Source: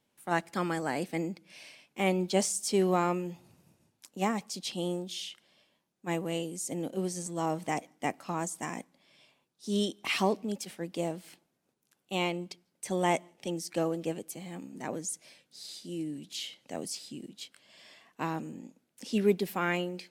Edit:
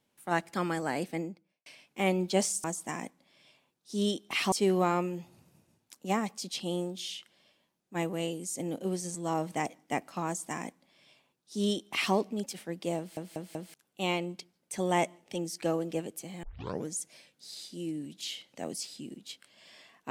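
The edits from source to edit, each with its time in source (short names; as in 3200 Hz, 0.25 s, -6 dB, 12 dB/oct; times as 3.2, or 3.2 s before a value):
1.01–1.66 studio fade out
8.38–10.26 copy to 2.64
11.1 stutter in place 0.19 s, 4 plays
14.55 tape start 0.45 s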